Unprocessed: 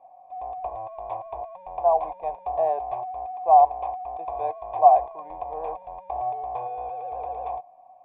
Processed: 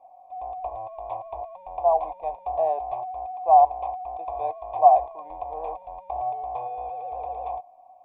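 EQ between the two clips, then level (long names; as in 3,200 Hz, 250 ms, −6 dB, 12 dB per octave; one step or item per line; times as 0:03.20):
graphic EQ with 15 bands 160 Hz −9 dB, 400 Hz −5 dB, 1,600 Hz −11 dB
+1.5 dB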